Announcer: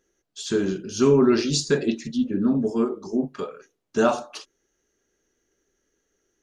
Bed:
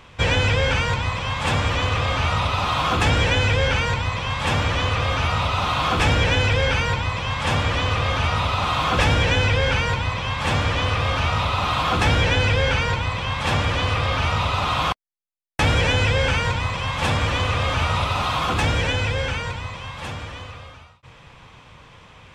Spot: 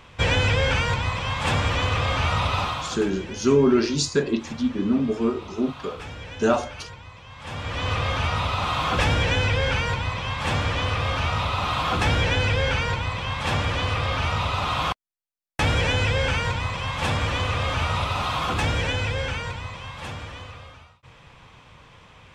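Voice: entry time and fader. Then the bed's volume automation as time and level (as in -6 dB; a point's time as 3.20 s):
2.45 s, -0.5 dB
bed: 2.60 s -1.5 dB
3.10 s -19 dB
7.29 s -19 dB
7.90 s -3 dB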